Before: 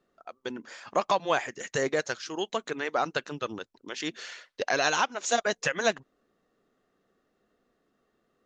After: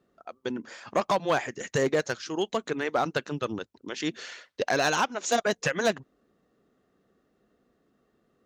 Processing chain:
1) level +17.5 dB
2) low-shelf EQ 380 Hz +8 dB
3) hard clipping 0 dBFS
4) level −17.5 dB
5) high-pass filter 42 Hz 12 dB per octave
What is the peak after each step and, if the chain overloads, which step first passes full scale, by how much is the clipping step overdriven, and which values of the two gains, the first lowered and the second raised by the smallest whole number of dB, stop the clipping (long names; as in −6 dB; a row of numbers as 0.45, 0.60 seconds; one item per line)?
+6.5, +7.5, 0.0, −17.5, −15.0 dBFS
step 1, 7.5 dB
step 1 +9.5 dB, step 4 −9.5 dB